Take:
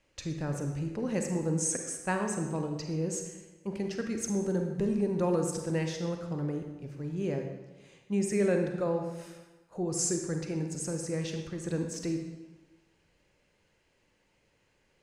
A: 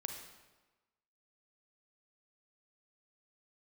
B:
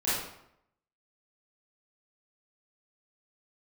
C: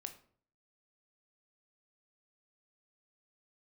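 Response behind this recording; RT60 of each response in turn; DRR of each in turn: A; 1.2 s, 0.75 s, 0.50 s; 4.0 dB, -11.5 dB, 6.5 dB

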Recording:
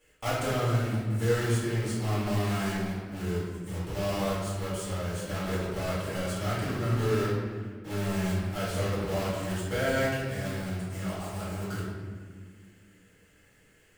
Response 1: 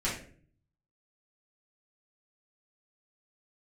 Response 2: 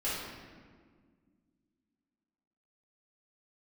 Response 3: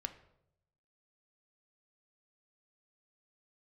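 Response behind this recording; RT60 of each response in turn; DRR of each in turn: 2; 0.50 s, 1.8 s, 0.80 s; -8.5 dB, -10.5 dB, 7.5 dB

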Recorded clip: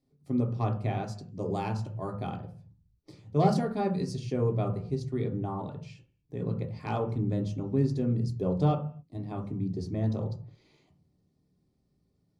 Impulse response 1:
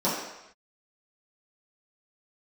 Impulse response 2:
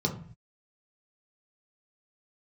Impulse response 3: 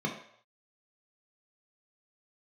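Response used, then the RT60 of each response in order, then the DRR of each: 2; no single decay rate, 0.50 s, no single decay rate; -11.0 dB, 0.5 dB, -0.5 dB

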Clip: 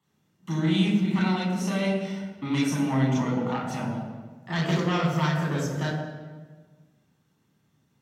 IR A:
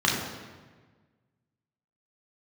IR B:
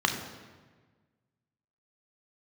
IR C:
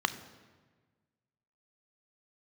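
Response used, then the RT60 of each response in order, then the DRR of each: A; 1.4 s, 1.4 s, 1.4 s; -3.5 dB, 3.0 dB, 11.0 dB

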